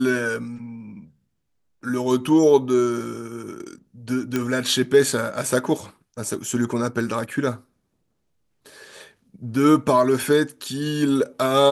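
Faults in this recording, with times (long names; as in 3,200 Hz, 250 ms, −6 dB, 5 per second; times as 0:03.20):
0:04.36: click −9 dBFS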